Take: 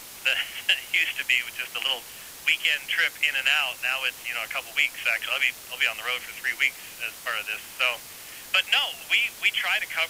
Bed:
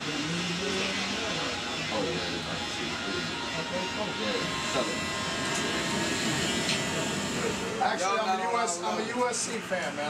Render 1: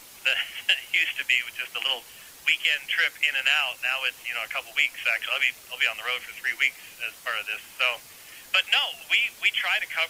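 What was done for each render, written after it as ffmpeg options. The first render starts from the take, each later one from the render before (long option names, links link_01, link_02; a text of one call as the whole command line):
ffmpeg -i in.wav -af "afftdn=noise_reduction=6:noise_floor=-43" out.wav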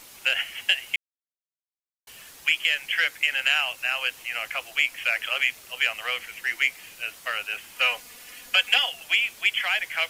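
ffmpeg -i in.wav -filter_complex "[0:a]asettb=1/sr,asplit=3[link_01][link_02][link_03];[link_01]atrim=end=7.764[link_04];[link_02]atrim=start=7.76:end=8.9,asetpts=PTS-STARTPTS,afade=type=in:duration=0.004:curve=qsin,afade=type=out:start_time=1.136:duration=0.004:curve=qsin,aecho=1:1:4.1:0.65,atrim=end_sample=50274[link_05];[link_03]atrim=start=8.896[link_06];[link_04][link_05]acrossfade=duration=0.004:curve1=hsin:curve2=qsin[link_07];[link_07][link_06]acrossfade=duration=0.004:curve1=qsin:curve2=hsin,asplit=3[link_08][link_09][link_10];[link_08]atrim=end=0.96,asetpts=PTS-STARTPTS,afade=type=out:start_time=0.956:duration=0.004:curve=hsin[link_11];[link_09]atrim=start=0.96:end=2.07,asetpts=PTS-STARTPTS,volume=0[link_12];[link_10]atrim=start=2.07,asetpts=PTS-STARTPTS,afade=type=in:duration=0.004:curve=hsin[link_13];[link_11][link_12][link_13]concat=n=3:v=0:a=1" out.wav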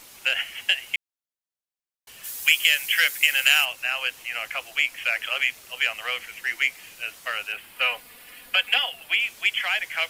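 ffmpeg -i in.wav -filter_complex "[0:a]asplit=3[link_01][link_02][link_03];[link_01]afade=type=out:start_time=2.23:duration=0.02[link_04];[link_02]aemphasis=mode=production:type=75kf,afade=type=in:start_time=2.23:duration=0.02,afade=type=out:start_time=3.64:duration=0.02[link_05];[link_03]afade=type=in:start_time=3.64:duration=0.02[link_06];[link_04][link_05][link_06]amix=inputs=3:normalize=0,asettb=1/sr,asplit=3[link_07][link_08][link_09];[link_07]atrim=end=7.524[link_10];[link_08]atrim=start=7.52:end=9.2,asetpts=PTS-STARTPTS,afade=type=in:duration=0.004:curve=qsin,afade=type=out:start_time=1.676:duration=0.004:curve=qsin,equalizer=frequency=6300:width_type=o:width=0.75:gain=-10.5[link_11];[link_09]atrim=start=9.196[link_12];[link_10][link_11]acrossfade=duration=0.004:curve1=hsin:curve2=qsin[link_13];[link_13][link_12]acrossfade=duration=0.004:curve1=qsin:curve2=hsin" out.wav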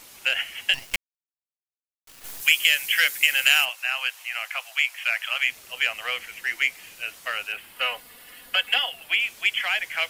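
ffmpeg -i in.wav -filter_complex "[0:a]asplit=3[link_01][link_02][link_03];[link_01]afade=type=out:start_time=0.73:duration=0.02[link_04];[link_02]acrusher=bits=4:dc=4:mix=0:aa=0.000001,afade=type=in:start_time=0.73:duration=0.02,afade=type=out:start_time=2.4:duration=0.02[link_05];[link_03]afade=type=in:start_time=2.4:duration=0.02[link_06];[link_04][link_05][link_06]amix=inputs=3:normalize=0,asettb=1/sr,asplit=3[link_07][link_08][link_09];[link_07]atrim=end=3.694[link_10];[link_08]atrim=start=3.69:end=5.43,asetpts=PTS-STARTPTS,afade=type=in:duration=0.004:curve=qsin,afade=type=out:start_time=1.736:duration=0.004:curve=qsin,highpass=frequency=680:width=0.5412,highpass=frequency=680:width=1.3066[link_11];[link_09]atrim=start=5.426[link_12];[link_10][link_11]acrossfade=duration=0.004:curve1=hsin:curve2=qsin[link_13];[link_13][link_12]acrossfade=duration=0.004:curve1=qsin:curve2=hsin,asettb=1/sr,asplit=3[link_14][link_15][link_16];[link_14]atrim=end=7.724[link_17];[link_15]atrim=start=7.72:end=8.9,asetpts=PTS-STARTPTS,afade=type=in:duration=0.004:curve=qsin,afade=type=out:start_time=1.176:duration=0.004:curve=qsin,bandreject=frequency=2400:width=9.9[link_18];[link_16]atrim=start=8.896[link_19];[link_17][link_18]acrossfade=duration=0.004:curve1=hsin:curve2=qsin[link_20];[link_20][link_19]acrossfade=duration=0.004:curve1=qsin:curve2=hsin" out.wav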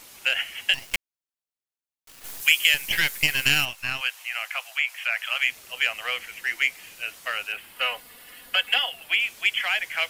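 ffmpeg -i in.wav -filter_complex "[0:a]asettb=1/sr,asplit=3[link_01][link_02][link_03];[link_01]atrim=end=2.744[link_04];[link_02]atrim=start=2.74:end=4.01,asetpts=PTS-STARTPTS,afade=type=in:duration=0.004:curve=qsin,afade=type=out:start_time=1.266:duration=0.004:curve=qsin,aeval=exprs='if(lt(val(0),0),0.447*val(0),val(0))':channel_layout=same[link_05];[link_03]atrim=start=4.006[link_06];[link_04][link_05]acrossfade=duration=0.004:curve1=hsin:curve2=qsin[link_07];[link_07][link_06]acrossfade=duration=0.004:curve1=qsin:curve2=hsin,asettb=1/sr,asplit=3[link_08][link_09][link_10];[link_08]atrim=end=4.644[link_11];[link_09]atrim=start=4.64:end=5.25,asetpts=PTS-STARTPTS,afade=type=in:duration=0.004:curve=qsin,afade=type=out:start_time=0.606:duration=0.004:curve=qsin,acrossover=split=2800[link_12][link_13];[link_13]acompressor=threshold=-33dB:ratio=4:attack=1:release=60[link_14];[link_12][link_14]amix=inputs=2:normalize=0[link_15];[link_10]atrim=start=5.246[link_16];[link_11][link_15]acrossfade=duration=0.004:curve1=hsin:curve2=qsin[link_17];[link_17][link_16]acrossfade=duration=0.004:curve1=qsin:curve2=hsin" out.wav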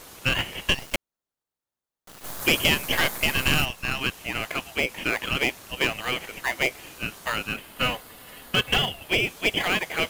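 ffmpeg -i in.wav -filter_complex "[0:a]asplit=2[link_01][link_02];[link_02]acrusher=samples=16:mix=1:aa=0.000001,volume=-3.5dB[link_03];[link_01][link_03]amix=inputs=2:normalize=0,asoftclip=type=tanh:threshold=-11dB" out.wav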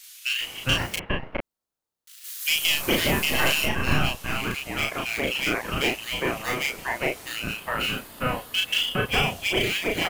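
ffmpeg -i in.wav -filter_complex "[0:a]asplit=2[link_01][link_02];[link_02]adelay=35,volume=-2dB[link_03];[link_01][link_03]amix=inputs=2:normalize=0,acrossover=split=2100[link_04][link_05];[link_04]adelay=410[link_06];[link_06][link_05]amix=inputs=2:normalize=0" out.wav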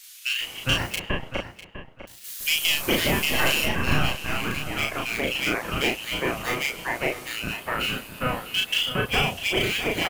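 ffmpeg -i in.wav -filter_complex "[0:a]asplit=2[link_01][link_02];[link_02]adelay=650,lowpass=frequency=4000:poles=1,volume=-12dB,asplit=2[link_03][link_04];[link_04]adelay=650,lowpass=frequency=4000:poles=1,volume=0.18[link_05];[link_01][link_03][link_05]amix=inputs=3:normalize=0" out.wav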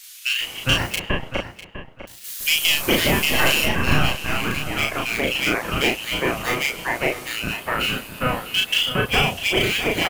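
ffmpeg -i in.wav -af "volume=4dB" out.wav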